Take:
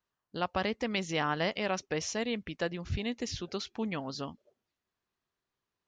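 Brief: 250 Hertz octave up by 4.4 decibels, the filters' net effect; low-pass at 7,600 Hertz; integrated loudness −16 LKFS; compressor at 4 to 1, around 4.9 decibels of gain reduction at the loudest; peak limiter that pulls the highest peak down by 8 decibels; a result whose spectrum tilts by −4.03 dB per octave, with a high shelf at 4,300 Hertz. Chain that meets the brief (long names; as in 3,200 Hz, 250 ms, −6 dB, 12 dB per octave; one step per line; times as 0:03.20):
low-pass filter 7,600 Hz
parametric band 250 Hz +5.5 dB
high-shelf EQ 4,300 Hz +7 dB
downward compressor 4 to 1, threshold −30 dBFS
level +21.5 dB
brickwall limiter −4.5 dBFS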